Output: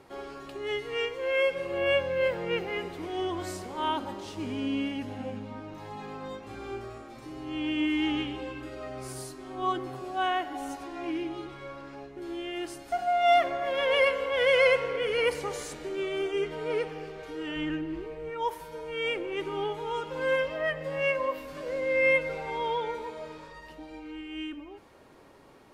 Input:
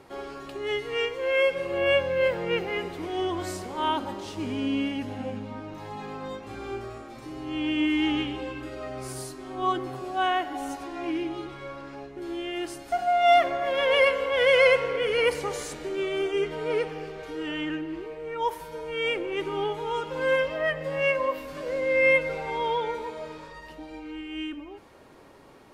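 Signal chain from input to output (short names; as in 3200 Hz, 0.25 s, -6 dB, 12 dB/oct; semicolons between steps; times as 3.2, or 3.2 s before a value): 17.56–18.3 low shelf 170 Hz +10.5 dB; gain -3 dB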